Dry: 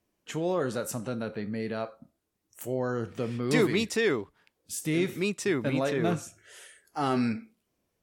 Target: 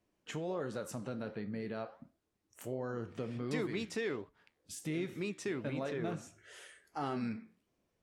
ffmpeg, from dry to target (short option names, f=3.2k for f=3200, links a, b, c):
-af "acompressor=threshold=-39dB:ratio=2,aemphasis=mode=reproduction:type=50fm,flanger=delay=5.5:depth=9.1:regen=-83:speed=1.4:shape=sinusoidal,highshelf=f=5.4k:g=5.5,volume=2.5dB"